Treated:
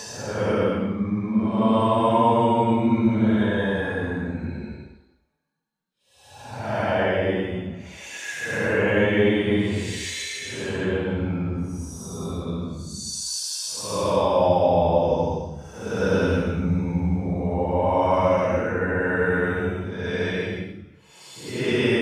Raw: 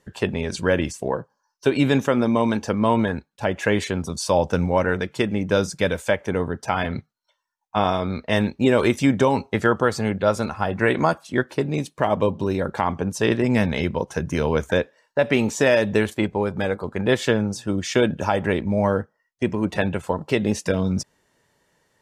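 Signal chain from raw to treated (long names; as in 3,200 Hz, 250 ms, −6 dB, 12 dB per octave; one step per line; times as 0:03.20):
extreme stretch with random phases 8.5×, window 0.10 s, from 0:02.64
level −1.5 dB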